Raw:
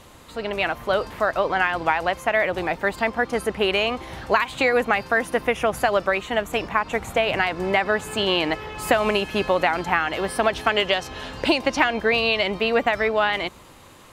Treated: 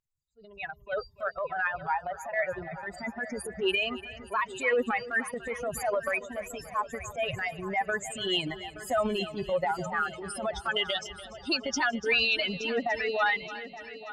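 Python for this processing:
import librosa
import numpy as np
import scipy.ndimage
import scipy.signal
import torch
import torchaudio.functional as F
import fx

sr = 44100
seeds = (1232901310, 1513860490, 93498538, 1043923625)

p1 = fx.bin_expand(x, sr, power=3.0)
p2 = scipy.signal.sosfilt(scipy.signal.butter(2, 10000.0, 'lowpass', fs=sr, output='sos'), p1)
p3 = fx.low_shelf(p2, sr, hz=120.0, db=-8.5)
p4 = fx.over_compress(p3, sr, threshold_db=-23.0, ratio=-1.0)
p5 = p3 + F.gain(torch.from_numpy(p4), 2.0).numpy()
p6 = fx.transient(p5, sr, attack_db=-9, sustain_db=7)
p7 = p6 + fx.echo_heads(p6, sr, ms=291, heads='first and third', feedback_pct=49, wet_db=-15.5, dry=0)
y = F.gain(torch.from_numpy(p7), -5.0).numpy()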